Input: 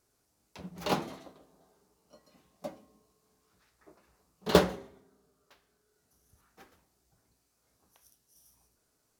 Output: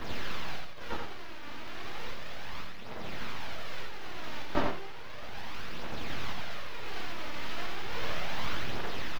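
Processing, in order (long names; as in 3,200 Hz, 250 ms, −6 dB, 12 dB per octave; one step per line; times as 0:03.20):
spike at every zero crossing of −17.5 dBFS
tube saturation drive 16 dB, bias 0.55
resonators tuned to a chord D#2 major, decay 0.45 s
phase shifter 0.34 Hz, delay 3.5 ms, feedback 65%
full-wave rectification
high-frequency loss of the air 290 metres
single-tap delay 86 ms −5.5 dB
multiband upward and downward expander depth 40%
level +10.5 dB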